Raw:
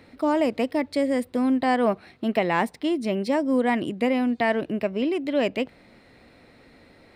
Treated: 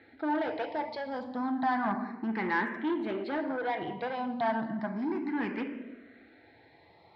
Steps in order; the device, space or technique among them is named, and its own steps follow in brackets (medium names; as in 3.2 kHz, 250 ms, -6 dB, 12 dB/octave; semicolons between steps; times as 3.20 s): simulated room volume 610 m³, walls mixed, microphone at 0.73 m; barber-pole phaser into a guitar amplifier (barber-pole phaser +0.32 Hz; saturation -22.5 dBFS, distortion -13 dB; cabinet simulation 110–4100 Hz, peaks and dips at 150 Hz -4 dB, 540 Hz -9 dB, 850 Hz +9 dB, 1.6 kHz +7 dB, 2.7 kHz -8 dB); trim -3 dB